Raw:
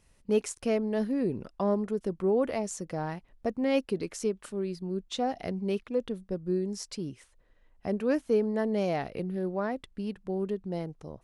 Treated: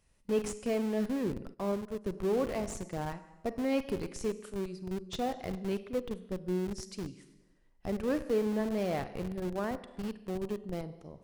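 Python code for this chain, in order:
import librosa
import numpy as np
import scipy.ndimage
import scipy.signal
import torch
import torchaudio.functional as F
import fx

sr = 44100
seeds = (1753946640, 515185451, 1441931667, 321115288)

p1 = fx.dynamic_eq(x, sr, hz=1100.0, q=3.1, threshold_db=-49.0, ratio=4.0, max_db=3)
p2 = fx.rev_schroeder(p1, sr, rt60_s=1.1, comb_ms=33, drr_db=10.0)
p3 = fx.wow_flutter(p2, sr, seeds[0], rate_hz=2.1, depth_cents=23.0)
p4 = fx.schmitt(p3, sr, flips_db=-29.0)
p5 = p3 + (p4 * 10.0 ** (-5.5 / 20.0))
p6 = fx.upward_expand(p5, sr, threshold_db=-44.0, expansion=1.5, at=(1.53, 2.04), fade=0.02)
y = p6 * 10.0 ** (-6.0 / 20.0)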